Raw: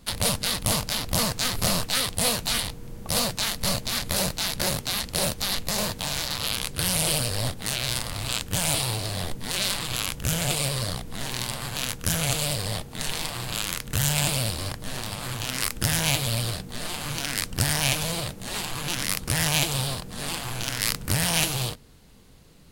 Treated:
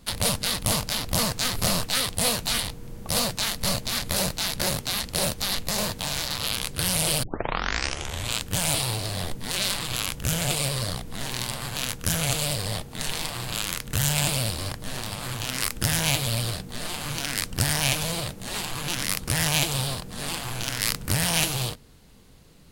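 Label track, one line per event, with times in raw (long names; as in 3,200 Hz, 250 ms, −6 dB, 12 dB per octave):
7.230000	7.230000	tape start 1.14 s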